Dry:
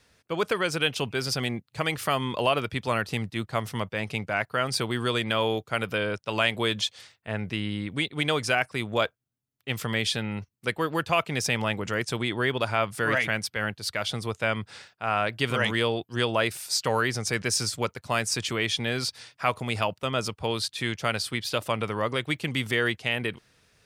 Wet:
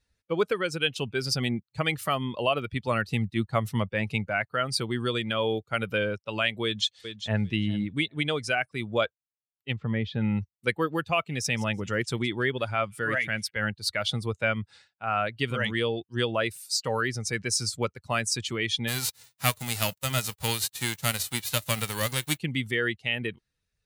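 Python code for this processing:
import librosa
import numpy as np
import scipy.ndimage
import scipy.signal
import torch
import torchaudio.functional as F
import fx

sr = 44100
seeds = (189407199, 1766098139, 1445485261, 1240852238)

y = fx.echo_throw(x, sr, start_s=6.64, length_s=0.8, ms=400, feedback_pct=25, wet_db=-11.0)
y = fx.spacing_loss(y, sr, db_at_10k=35, at=(9.73, 10.21))
y = fx.echo_wet_highpass(y, sr, ms=167, feedback_pct=30, hz=3900.0, wet_db=-11.0, at=(11.28, 13.49), fade=0.02)
y = fx.envelope_flatten(y, sr, power=0.3, at=(18.87, 22.37), fade=0.02)
y = fx.bin_expand(y, sr, power=1.5)
y = fx.dynamic_eq(y, sr, hz=920.0, q=3.3, threshold_db=-46.0, ratio=4.0, max_db=-5)
y = fx.rider(y, sr, range_db=10, speed_s=0.5)
y = y * 10.0 ** (3.0 / 20.0)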